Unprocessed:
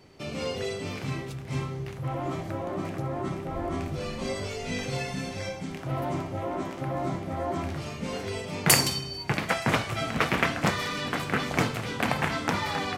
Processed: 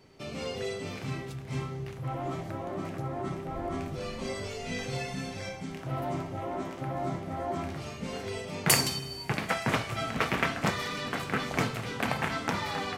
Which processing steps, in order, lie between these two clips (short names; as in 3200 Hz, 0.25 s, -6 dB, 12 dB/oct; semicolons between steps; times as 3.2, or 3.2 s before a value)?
two-slope reverb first 0.21 s, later 3.7 s, from -22 dB, DRR 11.5 dB; gain -3.5 dB